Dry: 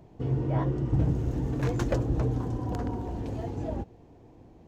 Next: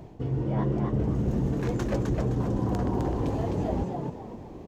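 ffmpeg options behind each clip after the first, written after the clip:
ffmpeg -i in.wav -filter_complex "[0:a]areverse,acompressor=threshold=-34dB:ratio=6,areverse,asplit=5[link_01][link_02][link_03][link_04][link_05];[link_02]adelay=258,afreqshift=77,volume=-4dB[link_06];[link_03]adelay=516,afreqshift=154,volume=-13.4dB[link_07];[link_04]adelay=774,afreqshift=231,volume=-22.7dB[link_08];[link_05]adelay=1032,afreqshift=308,volume=-32.1dB[link_09];[link_01][link_06][link_07][link_08][link_09]amix=inputs=5:normalize=0,volume=8.5dB" out.wav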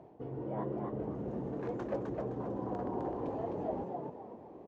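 ffmpeg -i in.wav -af "bandpass=frequency=630:width_type=q:width=0.87:csg=0,volume=-4dB" out.wav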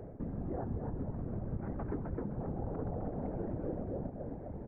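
ffmpeg -i in.wav -af "highpass=frequency=150:width_type=q:width=0.5412,highpass=frequency=150:width_type=q:width=1.307,lowpass=frequency=2200:width_type=q:width=0.5176,lowpass=frequency=2200:width_type=q:width=0.7071,lowpass=frequency=2200:width_type=q:width=1.932,afreqshift=-250,afftfilt=real='hypot(re,im)*cos(2*PI*random(0))':imag='hypot(re,im)*sin(2*PI*random(1))':win_size=512:overlap=0.75,acompressor=threshold=-52dB:ratio=3,volume=15dB" out.wav

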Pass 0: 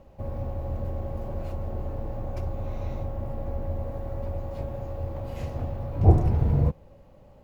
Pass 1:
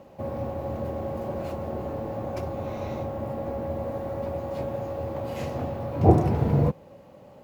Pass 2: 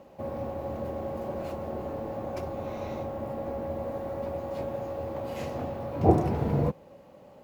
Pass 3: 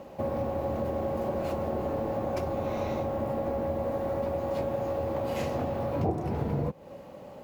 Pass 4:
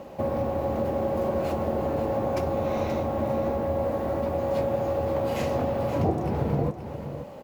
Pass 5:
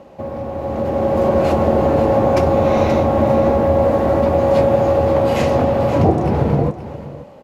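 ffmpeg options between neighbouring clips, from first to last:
ffmpeg -i in.wav -af "highpass=160,volume=6.5dB" out.wav
ffmpeg -i in.wav -af "equalizer=frequency=110:width=1.3:gain=-5,volume=-2dB" out.wav
ffmpeg -i in.wav -af "acompressor=threshold=-33dB:ratio=6,volume=6.5dB" out.wav
ffmpeg -i in.wav -af "aecho=1:1:528:0.316,volume=3.5dB" out.wav
ffmpeg -i in.wav -af "lowpass=12000,highshelf=frequency=6800:gain=-4.5,dynaudnorm=framelen=210:gausssize=9:maxgain=13.5dB" out.wav

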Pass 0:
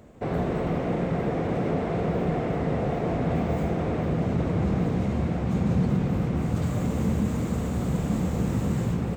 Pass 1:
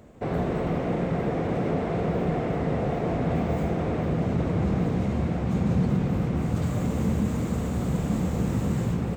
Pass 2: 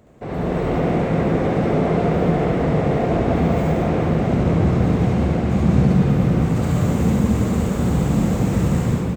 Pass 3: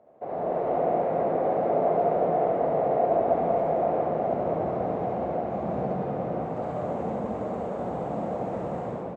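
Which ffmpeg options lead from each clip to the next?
ffmpeg -i in.wav -af anull out.wav
ffmpeg -i in.wav -filter_complex "[0:a]dynaudnorm=framelen=190:gausssize=5:maxgain=6dB,asplit=2[link_01][link_02];[link_02]aecho=0:1:69.97|192.4:1|0.631[link_03];[link_01][link_03]amix=inputs=2:normalize=0,volume=-2dB" out.wav
ffmpeg -i in.wav -af "bandpass=frequency=670:width_type=q:width=2.9:csg=0,volume=2.5dB" out.wav

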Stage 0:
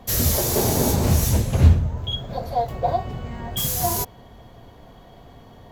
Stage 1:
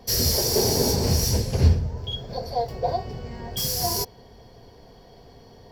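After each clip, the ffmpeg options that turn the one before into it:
ffmpeg -i in.wav -af "superequalizer=7b=2:10b=0.631:14b=3.98,volume=-4dB" out.wav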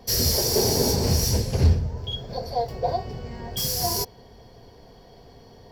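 ffmpeg -i in.wav -af "asoftclip=type=hard:threshold=-11dB" out.wav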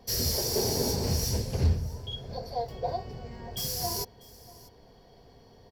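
ffmpeg -i in.wav -af "aecho=1:1:642:0.0891,volume=-6.5dB" out.wav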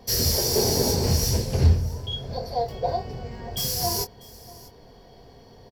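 ffmpeg -i in.wav -filter_complex "[0:a]asplit=2[link_01][link_02];[link_02]adelay=23,volume=-10.5dB[link_03];[link_01][link_03]amix=inputs=2:normalize=0,volume=5.5dB" out.wav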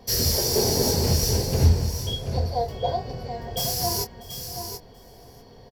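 ffmpeg -i in.wav -af "aecho=1:1:732:0.376" out.wav

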